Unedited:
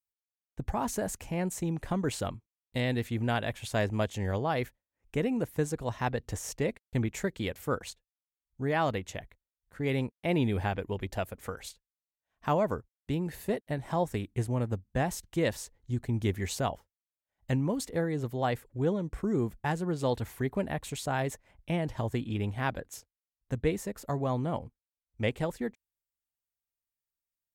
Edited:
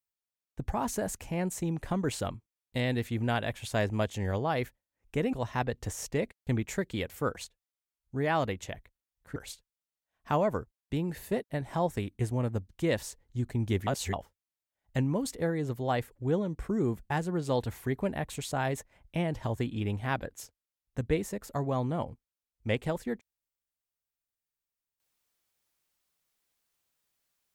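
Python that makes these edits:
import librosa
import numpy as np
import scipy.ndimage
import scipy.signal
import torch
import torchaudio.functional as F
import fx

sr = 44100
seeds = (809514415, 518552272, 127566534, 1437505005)

y = fx.edit(x, sr, fx.cut(start_s=5.33, length_s=0.46),
    fx.cut(start_s=9.82, length_s=1.71),
    fx.cut(start_s=14.86, length_s=0.37),
    fx.reverse_span(start_s=16.41, length_s=0.26), tone=tone)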